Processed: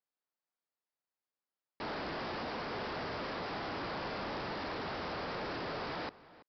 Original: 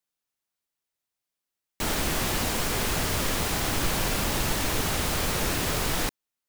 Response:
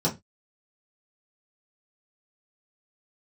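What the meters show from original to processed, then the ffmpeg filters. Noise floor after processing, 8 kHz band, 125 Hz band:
under -85 dBFS, under -35 dB, -16.5 dB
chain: -filter_complex "[0:a]highpass=f=560:p=1,equalizer=f=3300:w=0.7:g=-13.5,aresample=11025,asoftclip=type=tanh:threshold=0.0158,aresample=44100,asplit=2[s0][s1];[s1]adelay=332.4,volume=0.126,highshelf=f=4000:g=-7.48[s2];[s0][s2]amix=inputs=2:normalize=0,volume=1.12"

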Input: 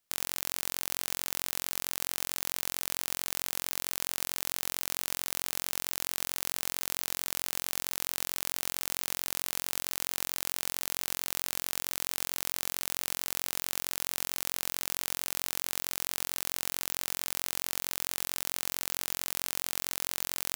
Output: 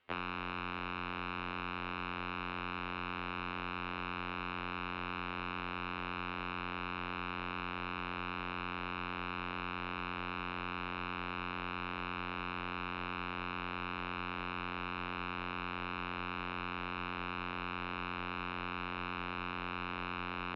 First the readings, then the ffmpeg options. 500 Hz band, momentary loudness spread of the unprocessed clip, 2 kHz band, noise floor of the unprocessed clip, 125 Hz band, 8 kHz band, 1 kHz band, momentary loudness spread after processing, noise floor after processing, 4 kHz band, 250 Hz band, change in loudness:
+0.5 dB, 0 LU, +1.0 dB, -79 dBFS, +6.5 dB, under -40 dB, +6.0 dB, 0 LU, -42 dBFS, -9.5 dB, +7.0 dB, -7.5 dB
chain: -filter_complex "[0:a]lowshelf=f=67:g=4.5,bandreject=f=78.18:t=h:w=4,bandreject=f=156.36:t=h:w=4,bandreject=f=234.54:t=h:w=4,bandreject=f=312.72:t=h:w=4,bandreject=f=390.9:t=h:w=4,bandreject=f=469.08:t=h:w=4,bandreject=f=547.26:t=h:w=4,bandreject=f=625.44:t=h:w=4,bandreject=f=703.62:t=h:w=4,acrossover=split=89|650[s0][s1][s2];[s1]acompressor=threshold=0.00224:ratio=4[s3];[s2]acompressor=threshold=0.0126:ratio=4[s4];[s0][s3][s4]amix=inputs=3:normalize=0,asoftclip=type=hard:threshold=0.0631,highpass=f=260:t=q:w=0.5412,highpass=f=260:t=q:w=1.307,lowpass=f=3300:t=q:w=0.5176,lowpass=f=3300:t=q:w=0.7071,lowpass=f=3300:t=q:w=1.932,afreqshift=-220,afftfilt=real='re*2*eq(mod(b,4),0)':imag='im*2*eq(mod(b,4),0)':win_size=2048:overlap=0.75,volume=6.31"

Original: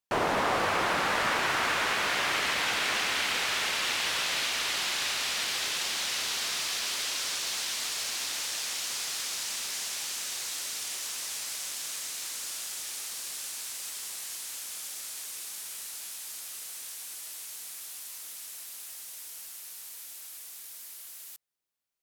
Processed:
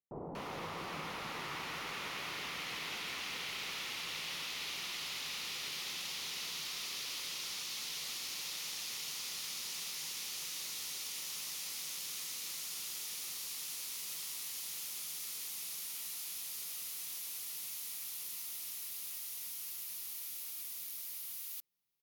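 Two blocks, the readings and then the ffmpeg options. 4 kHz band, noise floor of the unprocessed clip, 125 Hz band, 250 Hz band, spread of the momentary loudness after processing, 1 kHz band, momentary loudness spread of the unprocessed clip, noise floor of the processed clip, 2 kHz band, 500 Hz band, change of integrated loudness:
-9.0 dB, -45 dBFS, -7.0 dB, -10.5 dB, 2 LU, -14.5 dB, 14 LU, -44 dBFS, -13.0 dB, -14.5 dB, -9.0 dB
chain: -filter_complex "[0:a]equalizer=f=160:t=o:w=0.33:g=9,equalizer=f=630:t=o:w=0.33:g=-5,equalizer=f=1600:t=o:w=0.33:g=-9,equalizer=f=8000:t=o:w=0.33:g=-8,equalizer=f=16000:t=o:w=0.33:g=6,areverse,acompressor=threshold=0.01:ratio=6,areverse,acrossover=split=810[s0][s1];[s1]adelay=240[s2];[s0][s2]amix=inputs=2:normalize=0,volume=1.12"

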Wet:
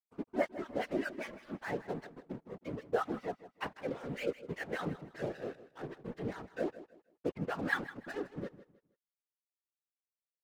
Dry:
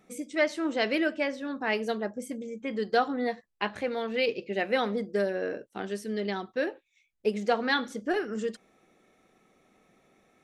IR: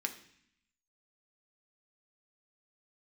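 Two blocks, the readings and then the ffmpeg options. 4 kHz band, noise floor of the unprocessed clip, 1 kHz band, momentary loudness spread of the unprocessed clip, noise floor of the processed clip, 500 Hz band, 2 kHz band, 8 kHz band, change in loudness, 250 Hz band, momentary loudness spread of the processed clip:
-15.5 dB, -73 dBFS, -10.0 dB, 8 LU, under -85 dBFS, -9.5 dB, -9.0 dB, -12.5 dB, -9.5 dB, -8.5 dB, 10 LU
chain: -filter_complex "[0:a]afftfilt=real='re*gte(hypot(re,im),0.01)':imag='im*gte(hypot(re,im),0.01)':win_size=1024:overlap=0.75,lowpass=1600,adynamicequalizer=threshold=0.00891:dfrequency=510:dqfactor=0.73:tfrequency=510:tqfactor=0.73:attack=5:release=100:ratio=0.375:range=2:mode=cutabove:tftype=bell,acrossover=split=980[s0][s1];[s0]aeval=exprs='val(0)*(1-1/2+1/2*cos(2*PI*5.1*n/s))':c=same[s2];[s1]aeval=exprs='val(0)*(1-1/2-1/2*cos(2*PI*5.1*n/s))':c=same[s3];[s2][s3]amix=inputs=2:normalize=0,aeval=exprs='sgn(val(0))*max(abs(val(0))-0.00447,0)':c=same,afftfilt=real='hypot(re,im)*cos(2*PI*random(0))':imag='hypot(re,im)*sin(2*PI*random(1))':win_size=512:overlap=0.75,aecho=1:1:158|316|474:0.168|0.0487|0.0141,volume=2"

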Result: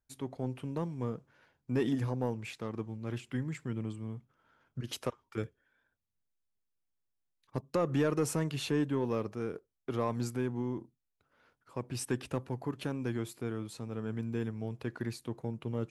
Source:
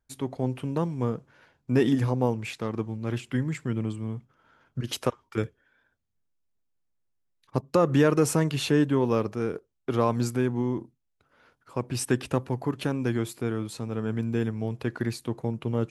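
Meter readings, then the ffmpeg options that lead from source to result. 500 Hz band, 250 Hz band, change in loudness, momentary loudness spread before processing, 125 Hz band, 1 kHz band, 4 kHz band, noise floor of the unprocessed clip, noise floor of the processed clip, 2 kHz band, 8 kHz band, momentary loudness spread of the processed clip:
-8.5 dB, -8.0 dB, -8.0 dB, 11 LU, -8.0 dB, -9.0 dB, -8.0 dB, -75 dBFS, -83 dBFS, -8.5 dB, -7.5 dB, 11 LU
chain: -af "asoftclip=type=tanh:threshold=0.266,volume=0.422"

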